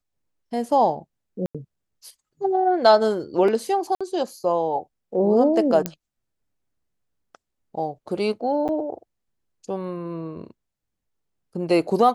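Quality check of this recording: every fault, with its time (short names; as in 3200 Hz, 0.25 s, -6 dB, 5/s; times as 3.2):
1.46–1.55 gap 86 ms
3.95–4.01 gap 56 ms
5.86 pop -8 dBFS
8.68–8.69 gap 8 ms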